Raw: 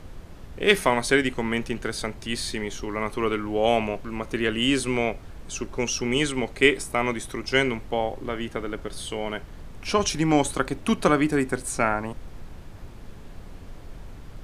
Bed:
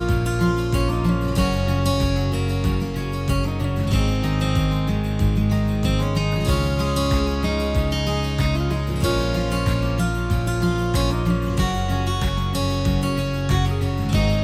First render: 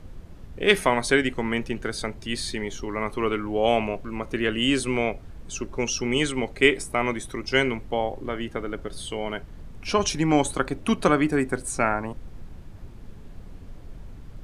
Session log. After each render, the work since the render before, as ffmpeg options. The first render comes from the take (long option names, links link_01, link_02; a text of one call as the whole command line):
ffmpeg -i in.wav -af "afftdn=noise_reduction=6:noise_floor=-42" out.wav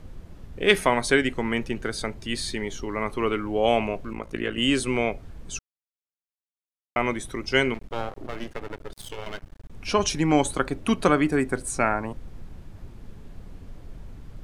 ffmpeg -i in.wav -filter_complex "[0:a]asettb=1/sr,asplit=3[link_01][link_02][link_03];[link_01]atrim=end=4.134[link_04];[link_02]atrim=start=4.13:end=4.58,asetpts=PTS-STARTPTS,afade=type=in:duration=0.004:curve=qsin,afade=type=out:start_time=0.446:duration=0.004:curve=qsin,tremolo=f=55:d=0.919[link_05];[link_03]atrim=start=4.576[link_06];[link_04][link_05]acrossfade=duration=0.004:curve1=hsin:curve2=qsin[link_07];[link_07][link_06]acrossfade=duration=0.004:curve1=qsin:curve2=hsin,asettb=1/sr,asplit=3[link_08][link_09][link_10];[link_08]atrim=end=7.744[link_11];[link_09]atrim=start=7.74:end=9.73,asetpts=PTS-STARTPTS,afade=type=in:duration=0.004:curve=qsin,afade=type=out:start_time=1.986:duration=0.004:curve=qsin,aeval=exprs='max(val(0),0)':channel_layout=same[link_12];[link_10]atrim=start=9.726[link_13];[link_11][link_12]acrossfade=duration=0.004:curve1=hsin:curve2=qsin[link_14];[link_14][link_13]acrossfade=duration=0.004:curve1=qsin:curve2=hsin,asplit=3[link_15][link_16][link_17];[link_15]atrim=end=5.59,asetpts=PTS-STARTPTS,afade=type=out:start_time=5.586:duration=0.004:curve=hsin[link_18];[link_16]atrim=start=5.59:end=6.96,asetpts=PTS-STARTPTS,volume=0[link_19];[link_17]atrim=start=6.96,asetpts=PTS-STARTPTS,afade=type=in:duration=0.004:curve=hsin[link_20];[link_18][link_19][link_20]concat=n=3:v=0:a=1" out.wav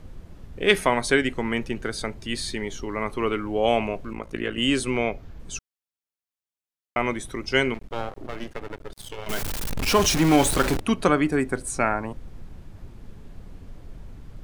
ffmpeg -i in.wav -filter_complex "[0:a]asettb=1/sr,asplit=3[link_01][link_02][link_03];[link_01]atrim=end=4.904[link_04];[link_02]atrim=start=4.9:end=5.4,asetpts=PTS-STARTPTS,afade=type=in:duration=0.004:curve=qsin,afade=type=out:start_time=0.496:duration=0.004:curve=qsin,equalizer=frequency=9000:width_type=o:width=0.32:gain=-14.5[link_05];[link_03]atrim=start=5.396[link_06];[link_04][link_05]acrossfade=duration=0.004:curve1=hsin:curve2=qsin[link_07];[link_07][link_06]acrossfade=duration=0.004:curve1=qsin:curve2=hsin,asettb=1/sr,asplit=3[link_08][link_09][link_10];[link_08]atrim=end=9.294[link_11];[link_09]atrim=start=9.29:end=10.8,asetpts=PTS-STARTPTS,afade=type=in:duration=0.004:curve=qsin,afade=type=out:start_time=1.506:duration=0.004:curve=qsin,aeval=exprs='val(0)+0.5*0.0944*sgn(val(0))':channel_layout=same[link_12];[link_10]atrim=start=10.796[link_13];[link_11][link_12]acrossfade=duration=0.004:curve1=hsin:curve2=qsin[link_14];[link_14][link_13]acrossfade=duration=0.004:curve1=qsin:curve2=hsin" out.wav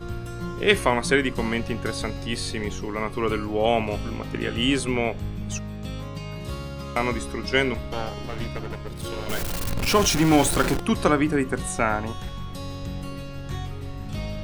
ffmpeg -i in.wav -i bed.wav -filter_complex "[1:a]volume=-13dB[link_01];[0:a][link_01]amix=inputs=2:normalize=0" out.wav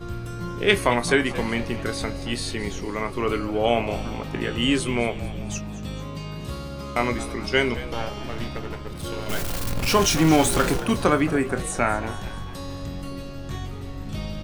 ffmpeg -i in.wav -filter_complex "[0:a]asplit=2[link_01][link_02];[link_02]adelay=25,volume=-10.5dB[link_03];[link_01][link_03]amix=inputs=2:normalize=0,asplit=6[link_04][link_05][link_06][link_07][link_08][link_09];[link_05]adelay=222,afreqshift=87,volume=-16dB[link_10];[link_06]adelay=444,afreqshift=174,volume=-21.4dB[link_11];[link_07]adelay=666,afreqshift=261,volume=-26.7dB[link_12];[link_08]adelay=888,afreqshift=348,volume=-32.1dB[link_13];[link_09]adelay=1110,afreqshift=435,volume=-37.4dB[link_14];[link_04][link_10][link_11][link_12][link_13][link_14]amix=inputs=6:normalize=0" out.wav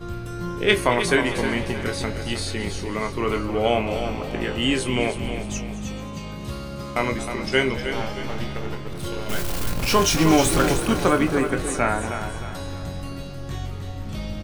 ffmpeg -i in.wav -filter_complex "[0:a]asplit=2[link_01][link_02];[link_02]adelay=23,volume=-10.5dB[link_03];[link_01][link_03]amix=inputs=2:normalize=0,aecho=1:1:312|624|936|1248|1560:0.355|0.145|0.0596|0.0245|0.01" out.wav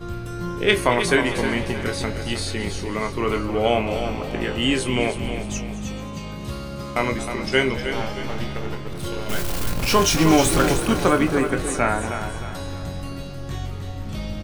ffmpeg -i in.wav -af "volume=1dB,alimiter=limit=-3dB:level=0:latency=1" out.wav